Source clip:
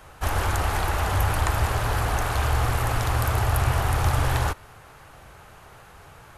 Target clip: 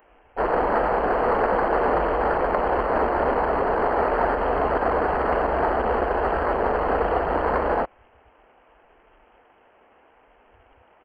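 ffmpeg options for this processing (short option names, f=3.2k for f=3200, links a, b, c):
-filter_complex "[0:a]lowpass=3.9k,aresample=11025,acrusher=bits=4:mode=log:mix=0:aa=0.000001,aresample=44100,lowshelf=f=160:g=-3,asplit=2[a][b];[b]asoftclip=type=tanh:threshold=-17.5dB,volume=-6dB[c];[a][c]amix=inputs=2:normalize=0,afwtdn=0.0282,asetrate=25442,aresample=44100,alimiter=limit=-15dB:level=0:latency=1:release=86,aemphasis=mode=production:type=riaa,volume=7.5dB"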